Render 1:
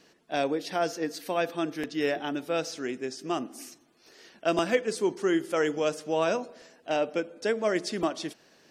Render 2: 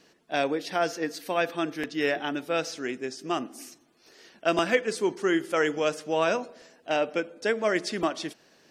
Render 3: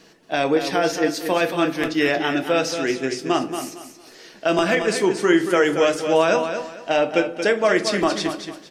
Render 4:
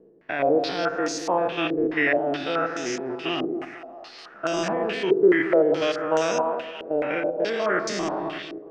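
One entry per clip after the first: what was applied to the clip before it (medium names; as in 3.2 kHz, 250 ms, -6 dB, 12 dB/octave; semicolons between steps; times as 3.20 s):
dynamic bell 1.9 kHz, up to +5 dB, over -41 dBFS, Q 0.72
peak limiter -16.5 dBFS, peak gain reduction 7.5 dB; feedback delay 228 ms, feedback 27%, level -8.5 dB; simulated room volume 140 m³, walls furnished, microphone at 0.63 m; trim +8 dB
spectrogram pixelated in time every 100 ms; two-band feedback delay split 770 Hz, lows 115 ms, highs 631 ms, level -12 dB; step-sequenced low-pass 4.7 Hz 430–6400 Hz; trim -5.5 dB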